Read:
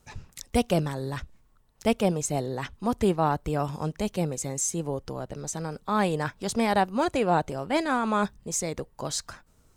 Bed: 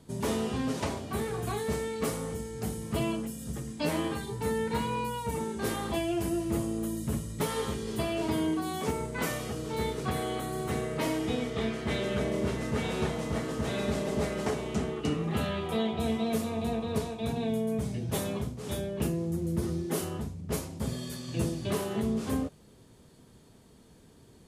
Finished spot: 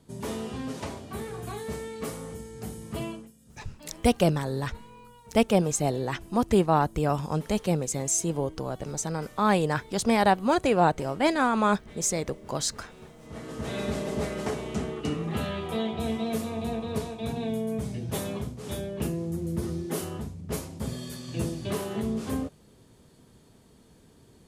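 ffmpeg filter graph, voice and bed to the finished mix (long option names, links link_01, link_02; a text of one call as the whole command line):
ffmpeg -i stem1.wav -i stem2.wav -filter_complex "[0:a]adelay=3500,volume=2dB[link_01];[1:a]volume=14.5dB,afade=type=out:start_time=3.03:duration=0.29:silence=0.188365,afade=type=in:start_time=13.2:duration=0.59:silence=0.125893[link_02];[link_01][link_02]amix=inputs=2:normalize=0" out.wav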